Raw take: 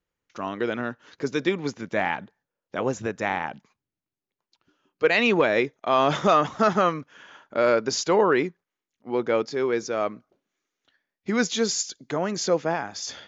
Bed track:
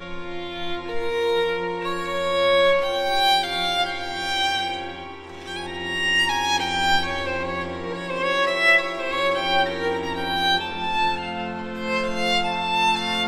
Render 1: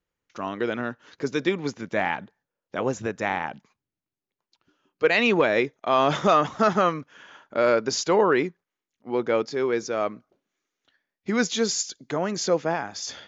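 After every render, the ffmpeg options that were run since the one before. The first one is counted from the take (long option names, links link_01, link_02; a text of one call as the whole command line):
ffmpeg -i in.wav -af anull out.wav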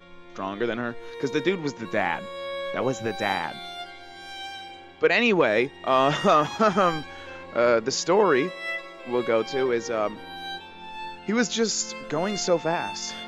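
ffmpeg -i in.wav -i bed.wav -filter_complex "[1:a]volume=-14.5dB[link_01];[0:a][link_01]amix=inputs=2:normalize=0" out.wav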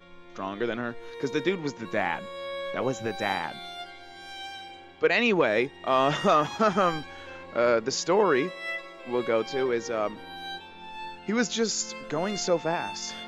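ffmpeg -i in.wav -af "volume=-2.5dB" out.wav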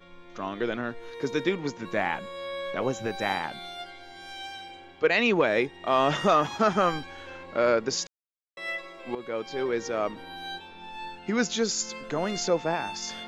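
ffmpeg -i in.wav -filter_complex "[0:a]asplit=4[link_01][link_02][link_03][link_04];[link_01]atrim=end=8.07,asetpts=PTS-STARTPTS,afade=type=out:start_time=8.066:duration=0.004:curve=hsin[link_05];[link_02]atrim=start=8.07:end=8.57,asetpts=PTS-STARTPTS,volume=0[link_06];[link_03]atrim=start=8.57:end=9.15,asetpts=PTS-STARTPTS,afade=type=in:duration=0.004:curve=hsin,afade=type=out:start_time=0.576:duration=0.004:curve=hsin:silence=0.223872[link_07];[link_04]atrim=start=9.15,asetpts=PTS-STARTPTS,afade=type=in:duration=0.68:silence=0.223872[link_08];[link_05][link_06][link_07][link_08]concat=n=4:v=0:a=1" out.wav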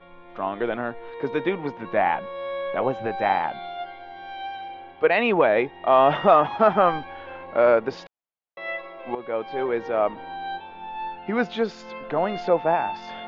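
ffmpeg -i in.wav -af "lowpass=frequency=3300:width=0.5412,lowpass=frequency=3300:width=1.3066,equalizer=frequency=760:width=1.3:gain=9.5" out.wav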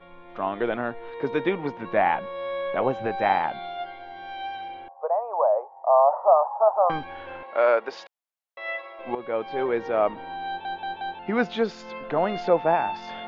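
ffmpeg -i in.wav -filter_complex "[0:a]asettb=1/sr,asplit=3[link_01][link_02][link_03];[link_01]atrim=end=4.884[link_04];[link_02]atrim=start=4.88:end=6.9,asetpts=PTS-STARTPTS,afade=type=in:duration=0.004:curve=qsin,afade=type=out:start_time=2.016:duration=0.004:curve=qsin,asuperpass=centerf=770:order=8:qfactor=1.4[link_05];[link_03]atrim=start=6.896[link_06];[link_04][link_05]acrossfade=duration=0.004:curve1=hsin:curve2=qsin[link_07];[link_07][link_06]acrossfade=duration=0.004:curve1=qsin:curve2=hsin,asettb=1/sr,asplit=3[link_08][link_09][link_10];[link_08]atrim=end=7.434[link_11];[link_09]atrim=start=7.43:end=8.99,asetpts=PTS-STARTPTS,afade=type=in:duration=0.004:curve=qsin,afade=type=out:start_time=1.556:duration=0.004:curve=qsin,highpass=550[link_12];[link_10]atrim=start=8.986[link_13];[link_11][link_12]acrossfade=duration=0.004:curve1=hsin:curve2=qsin[link_14];[link_14][link_13]acrossfade=duration=0.004:curve1=qsin:curve2=hsin,asplit=5[link_15][link_16][link_17][link_18][link_19];[link_15]atrim=end=10.652[link_20];[link_16]atrim=start=10.468:end=10.652[link_21];[link_17]atrim=start=10.468:end=10.652[link_22];[link_18]atrim=start=10.468:end=10.652[link_23];[link_19]atrim=start=11.188[link_24];[link_20][link_21]acrossfade=duration=0.004:curve1=hsin:curve2=hsin[link_25];[link_25][link_22]acrossfade=duration=0.004:curve1=hsin:curve2=hsin[link_26];[link_26][link_23]acrossfade=duration=0.004:curve1=hsin:curve2=hsin[link_27];[link_27][link_24]acrossfade=duration=0.004:curve1=hsin:curve2=hsin" out.wav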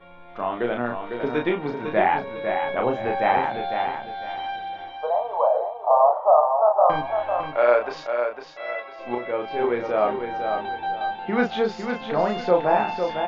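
ffmpeg -i in.wav -filter_complex "[0:a]asplit=2[link_01][link_02];[link_02]adelay=33,volume=-4dB[link_03];[link_01][link_03]amix=inputs=2:normalize=0,aecho=1:1:503|1006|1509|2012:0.473|0.137|0.0398|0.0115" out.wav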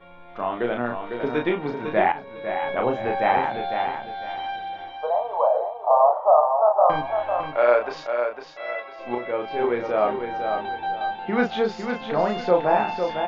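ffmpeg -i in.wav -filter_complex "[0:a]asplit=2[link_01][link_02];[link_01]atrim=end=2.12,asetpts=PTS-STARTPTS,afade=type=out:start_time=2.116:duration=0.004:curve=hsin:silence=0.251189[link_03];[link_02]atrim=start=2.12,asetpts=PTS-STARTPTS,afade=type=in:duration=0.6:silence=0.251189[link_04];[link_03][link_04]concat=n=2:v=0:a=1" out.wav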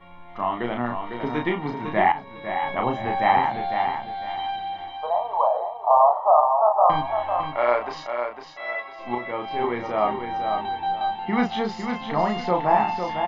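ffmpeg -i in.wav -af "aecho=1:1:1:0.57" out.wav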